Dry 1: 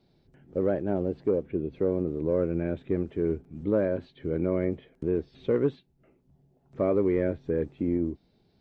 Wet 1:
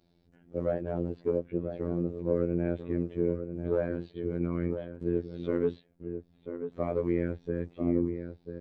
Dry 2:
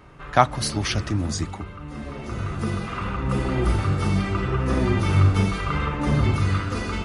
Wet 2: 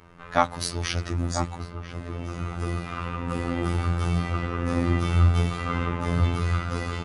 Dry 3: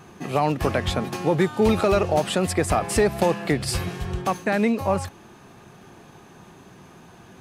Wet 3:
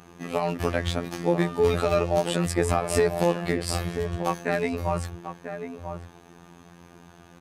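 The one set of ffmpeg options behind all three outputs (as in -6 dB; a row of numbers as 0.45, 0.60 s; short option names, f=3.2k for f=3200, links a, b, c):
-filter_complex "[0:a]asplit=2[a][b];[b]adelay=991.3,volume=-8dB,highshelf=f=4k:g=-22.3[c];[a][c]amix=inputs=2:normalize=0,afftfilt=real='hypot(re,im)*cos(PI*b)':imag='0':win_size=2048:overlap=0.75"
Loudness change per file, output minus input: -3.5, -3.5, -3.5 LU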